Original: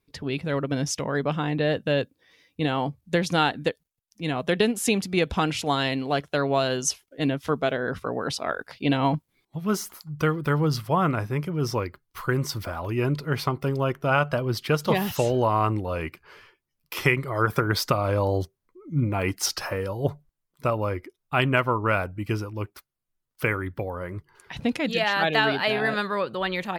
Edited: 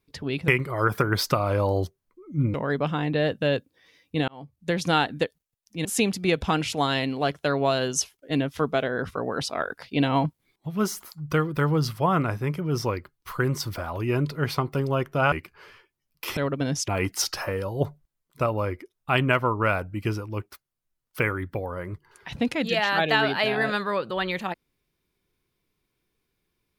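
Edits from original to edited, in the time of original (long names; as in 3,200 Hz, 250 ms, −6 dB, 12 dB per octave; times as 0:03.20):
0:00.48–0:00.99: swap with 0:17.06–0:19.12
0:02.73–0:03.32: fade in
0:04.30–0:04.74: remove
0:14.21–0:16.01: remove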